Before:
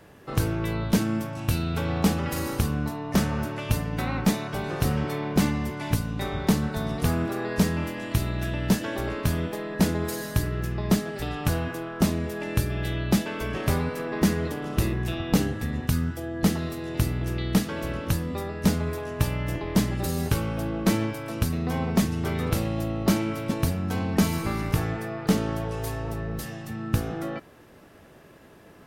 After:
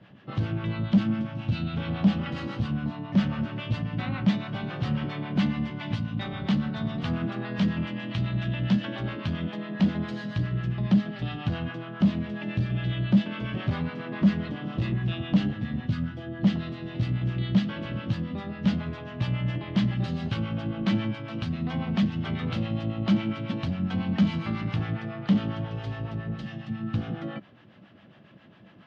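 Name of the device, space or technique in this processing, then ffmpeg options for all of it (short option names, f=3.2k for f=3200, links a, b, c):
guitar amplifier with harmonic tremolo: -filter_complex "[0:a]acrossover=split=610[a][b];[a]aeval=exprs='val(0)*(1-0.7/2+0.7/2*cos(2*PI*7.3*n/s))':c=same[c];[b]aeval=exprs='val(0)*(1-0.7/2-0.7/2*cos(2*PI*7.3*n/s))':c=same[d];[c][d]amix=inputs=2:normalize=0,asoftclip=type=tanh:threshold=-21dB,highpass=98,equalizer=f=120:t=q:w=4:g=9,equalizer=f=200:t=q:w=4:g=10,equalizer=f=430:t=q:w=4:g=-9,equalizer=f=920:t=q:w=4:g=-3,equalizer=f=3.1k:t=q:w=4:g=7,lowpass=f=4.1k:w=0.5412,lowpass=f=4.1k:w=1.3066"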